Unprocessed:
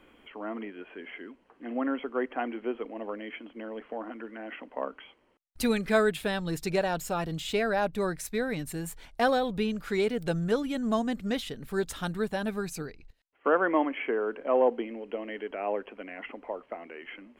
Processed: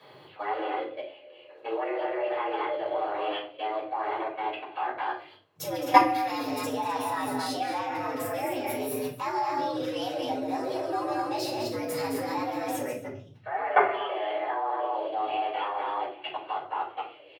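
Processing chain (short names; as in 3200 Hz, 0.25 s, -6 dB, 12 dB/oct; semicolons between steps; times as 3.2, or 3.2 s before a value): loudspeakers at several distances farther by 48 m -11 dB, 73 m -9 dB, 88 m -7 dB; formant shift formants +5 st; level quantiser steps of 20 dB; frequency shift +98 Hz; shoebox room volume 250 m³, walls furnished, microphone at 5.6 m; gain -1.5 dB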